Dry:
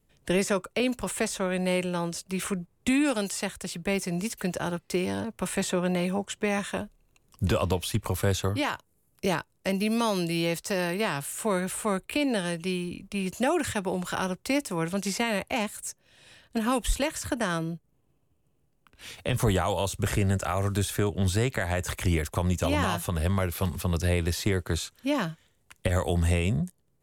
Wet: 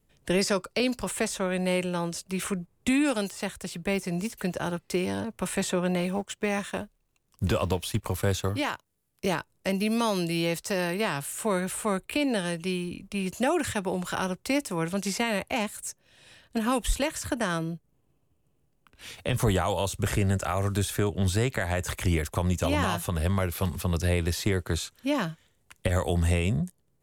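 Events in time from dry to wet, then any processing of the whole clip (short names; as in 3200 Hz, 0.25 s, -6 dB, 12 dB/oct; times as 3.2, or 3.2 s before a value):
0.41–1.03 bell 4800 Hz +14.5 dB 0.28 oct
3.27–4.78 de-esser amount 75%
6.01–9.39 G.711 law mismatch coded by A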